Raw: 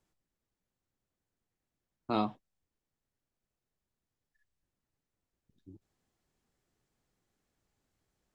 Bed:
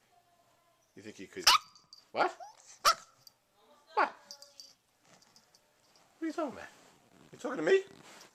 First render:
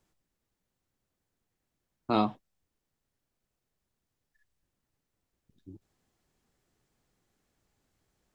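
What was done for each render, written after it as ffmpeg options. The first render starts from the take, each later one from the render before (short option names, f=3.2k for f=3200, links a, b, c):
-af "volume=4.5dB"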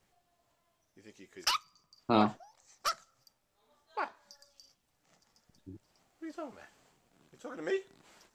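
-filter_complex "[1:a]volume=-7dB[a];[0:a][a]amix=inputs=2:normalize=0"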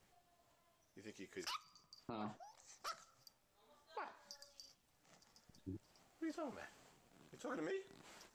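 -af "acompressor=threshold=-36dB:ratio=4,alimiter=level_in=12.5dB:limit=-24dB:level=0:latency=1:release=47,volume=-12.5dB"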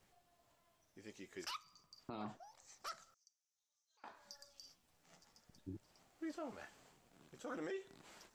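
-filter_complex "[0:a]asettb=1/sr,asplit=3[a][b][c];[a]atrim=end=3.144[d];[b]atrim=start=3.14:end=4.04,asetpts=PTS-STARTPTS,afade=t=in:d=0.004:c=qsin,afade=t=out:st=0.896:d=0.004:c=qsin,bandpass=f=6.1k:t=q:w=6[e];[c]atrim=start=4.036[f];[d][e]acrossfade=d=0.004:c1=hsin:c2=qsin[g];[g][f]acrossfade=d=0.004:c1=qsin:c2=hsin,asettb=1/sr,asplit=3[h][i][j];[h]atrim=end=4.614[k];[i]atrim=start=4.61:end=5.3,asetpts=PTS-STARTPTS,afade=t=in:d=0.004:c=qsin,afade=t=out:st=0.686:d=0.004:c=qsin,asplit=2[l][m];[m]adelay=12,volume=-5dB[n];[l][n]amix=inputs=2:normalize=0,atrim=end_sample=30429[o];[j]atrim=start=5.296[p];[k][o]acrossfade=d=0.004:c1=hsin:c2=qsin[q];[q][p]acrossfade=d=0.004:c1=qsin:c2=hsin"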